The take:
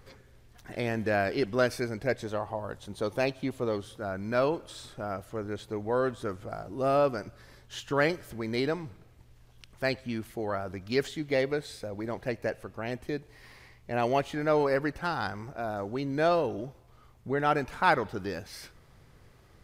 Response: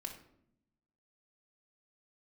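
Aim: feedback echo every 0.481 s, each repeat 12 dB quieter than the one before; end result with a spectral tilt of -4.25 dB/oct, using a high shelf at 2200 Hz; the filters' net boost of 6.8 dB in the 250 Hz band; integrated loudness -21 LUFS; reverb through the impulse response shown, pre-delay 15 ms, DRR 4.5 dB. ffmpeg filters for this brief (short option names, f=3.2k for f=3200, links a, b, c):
-filter_complex "[0:a]equalizer=f=250:t=o:g=8.5,highshelf=f=2.2k:g=-6,aecho=1:1:481|962|1443:0.251|0.0628|0.0157,asplit=2[a][b];[1:a]atrim=start_sample=2205,adelay=15[c];[b][c]afir=irnorm=-1:irlink=0,volume=-2dB[d];[a][d]amix=inputs=2:normalize=0,volume=6dB"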